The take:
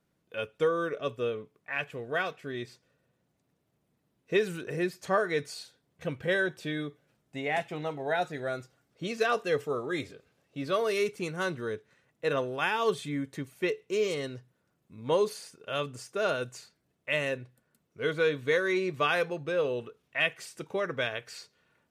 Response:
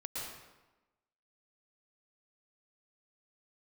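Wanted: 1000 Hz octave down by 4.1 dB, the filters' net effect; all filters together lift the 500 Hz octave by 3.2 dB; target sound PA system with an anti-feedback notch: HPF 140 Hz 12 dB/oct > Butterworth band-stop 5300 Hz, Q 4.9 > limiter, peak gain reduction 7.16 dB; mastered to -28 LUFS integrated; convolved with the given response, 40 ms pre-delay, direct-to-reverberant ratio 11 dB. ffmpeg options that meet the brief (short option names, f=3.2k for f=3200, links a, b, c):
-filter_complex "[0:a]equalizer=f=500:t=o:g=5.5,equalizer=f=1k:t=o:g=-8,asplit=2[a][b];[1:a]atrim=start_sample=2205,adelay=40[c];[b][c]afir=irnorm=-1:irlink=0,volume=-12dB[d];[a][d]amix=inputs=2:normalize=0,highpass=140,asuperstop=centerf=5300:order=8:qfactor=4.9,volume=3dB,alimiter=limit=-16dB:level=0:latency=1"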